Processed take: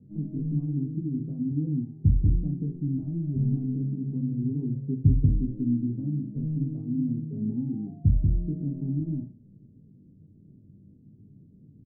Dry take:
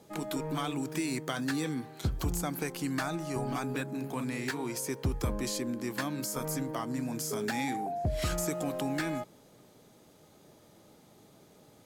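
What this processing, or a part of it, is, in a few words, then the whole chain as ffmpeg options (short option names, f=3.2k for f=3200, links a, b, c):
the neighbour's flat through the wall: -filter_complex "[0:a]lowpass=f=240:w=0.5412,lowpass=f=240:w=1.3066,equalizer=f=110:t=o:w=0.77:g=3.5,asettb=1/sr,asplit=3[a][b][c];[a]atrim=end=4.424[d];[b]atrim=start=4.42:end=6,asetpts=PTS-STARTPTS,afade=t=in:d=0.004:c=qsin,afade=t=out:st=1.576:d=0.004:c=qsin,aecho=1:1:7.3:0.62,atrim=end_sample=69678[e];[c]atrim=start=5.996[f];[d][e]acrossfade=d=0.004:c1=hsin:c2=qsin[g];[g][f]acrossfade=d=0.004:c1=qsin:c2=hsin,aecho=1:1:20|42|66.2|92.82|122.1:0.631|0.398|0.251|0.158|0.1,volume=7.5dB"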